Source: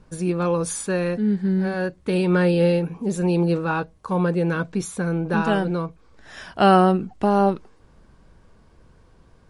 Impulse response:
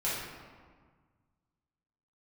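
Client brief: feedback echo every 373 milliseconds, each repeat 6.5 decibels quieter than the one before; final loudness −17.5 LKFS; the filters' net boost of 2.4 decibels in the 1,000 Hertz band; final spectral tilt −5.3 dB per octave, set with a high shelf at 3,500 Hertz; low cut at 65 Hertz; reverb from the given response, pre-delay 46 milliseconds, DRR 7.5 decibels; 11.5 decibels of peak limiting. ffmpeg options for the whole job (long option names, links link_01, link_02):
-filter_complex "[0:a]highpass=65,equalizer=frequency=1000:width_type=o:gain=4,highshelf=frequency=3500:gain=-6,alimiter=limit=-13dB:level=0:latency=1,aecho=1:1:373|746|1119|1492|1865|2238:0.473|0.222|0.105|0.0491|0.0231|0.0109,asplit=2[link_01][link_02];[1:a]atrim=start_sample=2205,adelay=46[link_03];[link_02][link_03]afir=irnorm=-1:irlink=0,volume=-15dB[link_04];[link_01][link_04]amix=inputs=2:normalize=0,volume=4.5dB"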